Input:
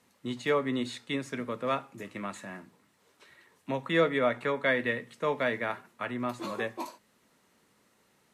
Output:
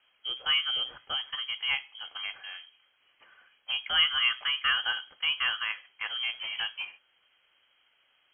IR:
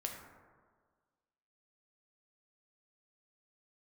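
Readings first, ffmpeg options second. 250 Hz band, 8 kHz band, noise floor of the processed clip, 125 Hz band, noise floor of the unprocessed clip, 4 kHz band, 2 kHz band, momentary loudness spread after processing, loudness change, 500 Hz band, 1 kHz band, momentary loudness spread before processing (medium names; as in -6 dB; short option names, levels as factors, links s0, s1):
under -30 dB, no reading, -70 dBFS, under -20 dB, -69 dBFS, +16.5 dB, +3.0 dB, 15 LU, +2.5 dB, -25.5 dB, -4.5 dB, 15 LU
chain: -af "lowpass=f=2900:t=q:w=0.5098,lowpass=f=2900:t=q:w=0.6013,lowpass=f=2900:t=q:w=0.9,lowpass=f=2900:t=q:w=2.563,afreqshift=-3400"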